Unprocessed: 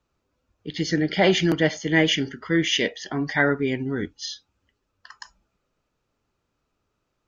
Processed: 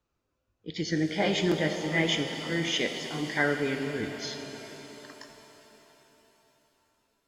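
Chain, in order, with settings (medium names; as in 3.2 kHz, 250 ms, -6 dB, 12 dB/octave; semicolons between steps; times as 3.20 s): sawtooth pitch modulation +1 st, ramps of 810 ms; pitch-shifted reverb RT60 3.9 s, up +7 st, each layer -8 dB, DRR 6 dB; trim -5.5 dB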